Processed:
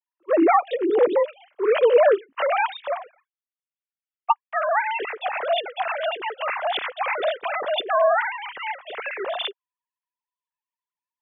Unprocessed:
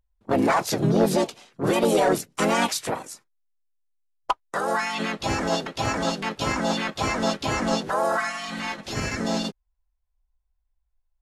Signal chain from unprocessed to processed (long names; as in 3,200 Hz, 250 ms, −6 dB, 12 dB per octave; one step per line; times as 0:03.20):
three sine waves on the formant tracks
level +2 dB